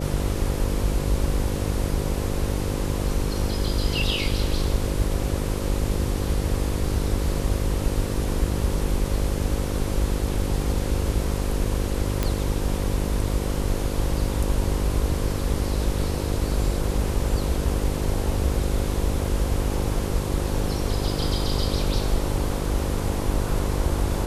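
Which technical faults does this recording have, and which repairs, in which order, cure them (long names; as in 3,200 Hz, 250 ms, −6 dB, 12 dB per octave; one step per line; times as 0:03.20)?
mains buzz 50 Hz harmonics 11 −28 dBFS
0:12.23: click −9 dBFS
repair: click removal
hum removal 50 Hz, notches 11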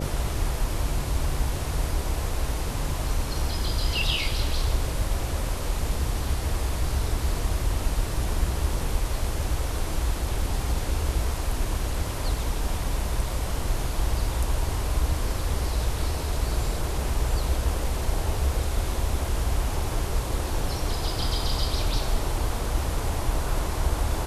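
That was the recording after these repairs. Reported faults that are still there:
none of them is left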